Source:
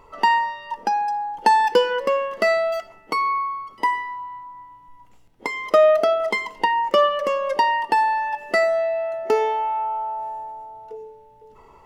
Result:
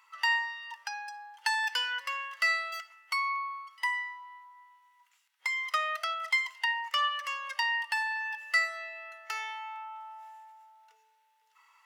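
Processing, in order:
high-pass filter 1,400 Hz 24 dB per octave
level −2 dB

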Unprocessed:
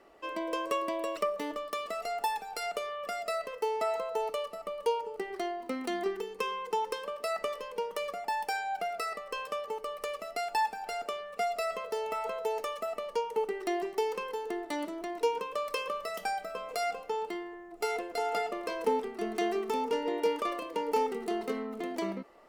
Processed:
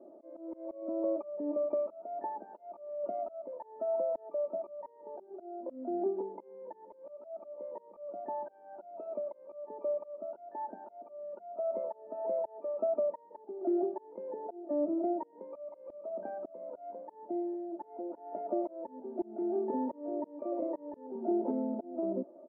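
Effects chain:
pitch-shifted copies added +12 semitones −3 dB
elliptic band-pass filter 160–640 Hz, stop band 80 dB
downward compressor 2.5 to 1, threshold −35 dBFS, peak gain reduction 7.5 dB
volume swells 411 ms
comb filter 3.3 ms, depth 89%
level +4.5 dB

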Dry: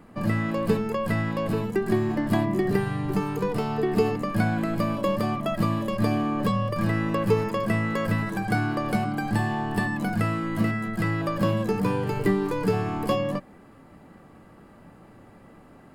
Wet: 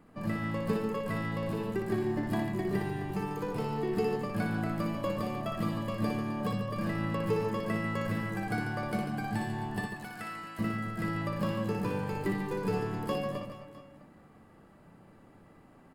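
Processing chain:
0:09.81–0:10.59: high-pass filter 1,400 Hz 6 dB per octave
reverse bouncing-ball delay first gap 60 ms, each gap 1.4×, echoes 5
level −9 dB

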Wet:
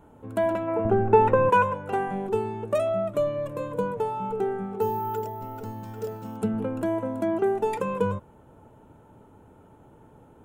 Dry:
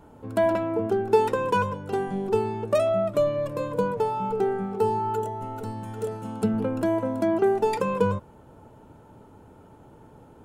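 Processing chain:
0:00.85–0:01.50: RIAA equalisation playback
0:00.68–0:02.27: gain on a spectral selection 490–2,900 Hz +7 dB
parametric band 4,800 Hz −10 dB 0.47 octaves
0:04.81–0:06.37: bad sample-rate conversion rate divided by 3×, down none, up hold
level −2.5 dB

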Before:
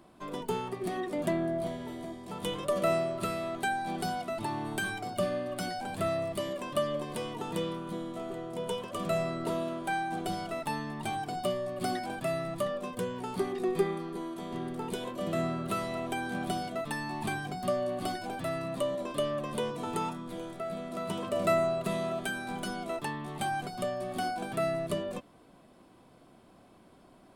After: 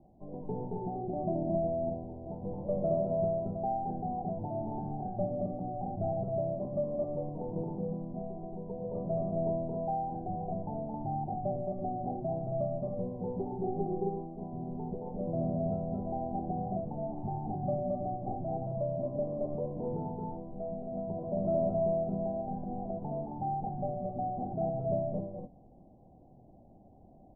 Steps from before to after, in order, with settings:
variable-slope delta modulation 32 kbit/s
Chebyshev low-pass filter 810 Hz, order 6
parametric band 390 Hz −13.5 dB 2.7 octaves
loudspeakers that aren't time-aligned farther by 76 metres −2 dB, 92 metres −3 dB
level +8 dB

